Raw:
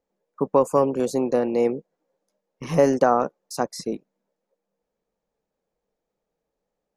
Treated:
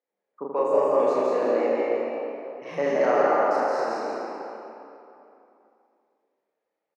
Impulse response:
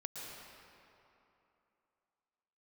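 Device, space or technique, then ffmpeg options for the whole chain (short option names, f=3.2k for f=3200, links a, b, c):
station announcement: -filter_complex "[0:a]asplit=6[a][b][c][d][e][f];[b]adelay=168,afreqshift=58,volume=-4dB[g];[c]adelay=336,afreqshift=116,volume=-12.2dB[h];[d]adelay=504,afreqshift=174,volume=-20.4dB[i];[e]adelay=672,afreqshift=232,volume=-28.5dB[j];[f]adelay=840,afreqshift=290,volume=-36.7dB[k];[a][g][h][i][j][k]amix=inputs=6:normalize=0,highpass=340,lowpass=4k,equalizer=f=2k:t=o:w=0.57:g=7,aecho=1:1:34.99|81.63:0.891|0.708[l];[1:a]atrim=start_sample=2205[m];[l][m]afir=irnorm=-1:irlink=0,volume=-4.5dB"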